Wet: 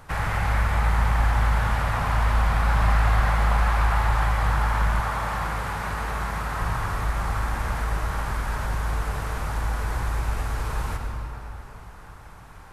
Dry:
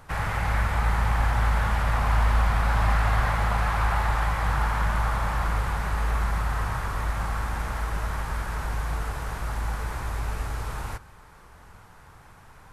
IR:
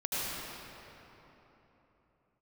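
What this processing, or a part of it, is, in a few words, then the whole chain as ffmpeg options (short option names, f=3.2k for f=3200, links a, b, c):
ducked reverb: -filter_complex "[0:a]asplit=3[a][b][c];[1:a]atrim=start_sample=2205[d];[b][d]afir=irnorm=-1:irlink=0[e];[c]apad=whole_len=561192[f];[e][f]sidechaincompress=threshold=-27dB:ratio=8:attack=16:release=390,volume=-8.5dB[g];[a][g]amix=inputs=2:normalize=0,asettb=1/sr,asplit=3[h][i][j];[h]atrim=end=5.004[k];[i]atrim=start=5:end=6.62,asetpts=PTS-STARTPTS,afade=t=in:d=0.004:c=qsin,afade=t=out:st=1.616:d=0.004:c=qsin,highpass=f=120:p=1[l];[j]atrim=start=6.616[m];[k][l]acrossfade=d=0.004:c1=hsin:c2=qsin[n];[n][m]acrossfade=d=0.004:c1=qsin:c2=hsin"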